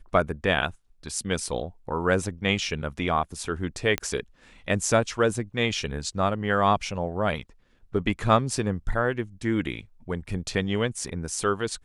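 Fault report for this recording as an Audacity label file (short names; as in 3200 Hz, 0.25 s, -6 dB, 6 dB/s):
3.980000	3.980000	pop -10 dBFS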